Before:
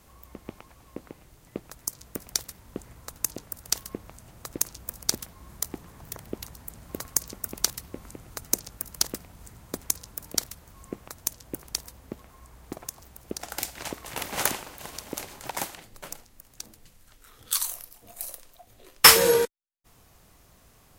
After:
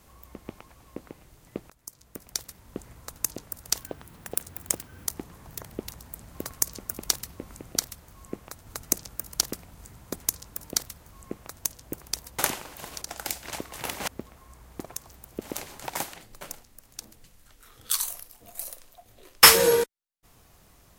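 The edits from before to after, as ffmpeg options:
ffmpeg -i in.wav -filter_complex "[0:a]asplit=10[link_01][link_02][link_03][link_04][link_05][link_06][link_07][link_08][link_09][link_10];[link_01]atrim=end=1.7,asetpts=PTS-STARTPTS,afade=type=out:start_time=1.696:duration=0.004:curve=hsin:silence=0.158489[link_11];[link_02]atrim=start=1.7:end=3.834,asetpts=PTS-STARTPTS,afade=type=in:duration=1.12:silence=0.158489[link_12];[link_03]atrim=start=3.83:end=5.61,asetpts=PTS-STARTPTS,asetrate=63504,aresample=44100,atrim=end_sample=54512,asetpts=PTS-STARTPTS[link_13];[link_04]atrim=start=5.606:end=8.282[link_14];[link_05]atrim=start=10.328:end=11.262[link_15];[link_06]atrim=start=8.278:end=12.002[link_16];[link_07]atrim=start=14.398:end=15.032[link_17];[link_08]atrim=start=13.338:end=14.402[link_18];[link_09]atrim=start=11.998:end=13.342[link_19];[link_10]atrim=start=15.028[link_20];[link_11][link_12]concat=n=2:v=0:a=1[link_21];[link_21][link_13]acrossfade=duration=0.004:curve1=hsin:curve2=hsin[link_22];[link_22][link_14]acrossfade=duration=0.004:curve1=hsin:curve2=hsin[link_23];[link_23][link_15]acrossfade=duration=0.004:curve1=hsin:curve2=hsin[link_24];[link_24][link_16]acrossfade=duration=0.004:curve1=hsin:curve2=hsin[link_25];[link_25][link_17]acrossfade=duration=0.004:curve1=hsin:curve2=hsin[link_26];[link_26][link_18]acrossfade=duration=0.004:curve1=hsin:curve2=hsin[link_27];[link_27][link_19]acrossfade=duration=0.004:curve1=hsin:curve2=hsin[link_28];[link_28][link_20]acrossfade=duration=0.004:curve1=hsin:curve2=hsin" out.wav

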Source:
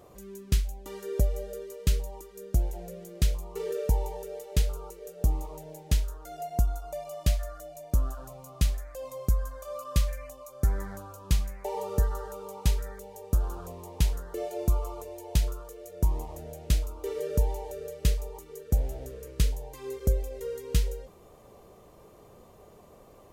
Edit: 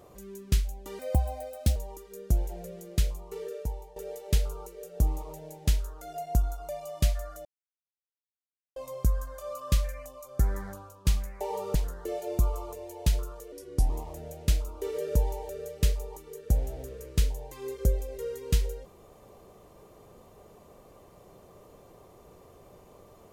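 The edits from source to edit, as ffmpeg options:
ffmpeg -i in.wav -filter_complex "[0:a]asplit=10[link_01][link_02][link_03][link_04][link_05][link_06][link_07][link_08][link_09][link_10];[link_01]atrim=end=0.994[link_11];[link_02]atrim=start=0.99:end=2,asetpts=PTS-STARTPTS,asetrate=57771,aresample=44100[link_12];[link_03]atrim=start=1.996:end=4.2,asetpts=PTS-STARTPTS,afade=type=out:start_time=1.094:duration=1.11:silence=0.158489[link_13];[link_04]atrim=start=4.2:end=7.69,asetpts=PTS-STARTPTS,afade=type=in:duration=0.004:curve=hsin:silence=0.158489,afade=type=out:start_time=3.486:duration=0.004:curve=hsin[link_14];[link_05]atrim=start=7.69:end=9,asetpts=PTS-STARTPTS,volume=0[link_15];[link_06]atrim=start=9:end=11.29,asetpts=PTS-STARTPTS,afade=type=in:duration=0.004:curve=hsin,afade=type=out:start_time=1.93:duration=0.36:silence=0.334965[link_16];[link_07]atrim=start=11.29:end=11.992,asetpts=PTS-STARTPTS,afade=type=in:duration=0.004:curve=hsin:silence=0.334965[link_17];[link_08]atrim=start=14.038:end=15.814[link_18];[link_09]atrim=start=15.81:end=16.12,asetpts=PTS-STARTPTS,asetrate=36162,aresample=44100[link_19];[link_10]atrim=start=16.116[link_20];[link_11][link_12]acrossfade=duration=0.004:curve1=hsin:curve2=hsin[link_21];[link_13][link_14][link_15][link_16][link_17]concat=n=5:v=0:a=1[link_22];[link_21][link_22]acrossfade=duration=0.004:curve1=hsin:curve2=hsin[link_23];[link_23][link_18]acrossfade=duration=0.004:curve1=hsin:curve2=hsin[link_24];[link_24][link_19]acrossfade=duration=0.004:curve1=hsin:curve2=hsin[link_25];[link_25][link_20]acrossfade=duration=0.004:curve1=hsin:curve2=hsin" out.wav

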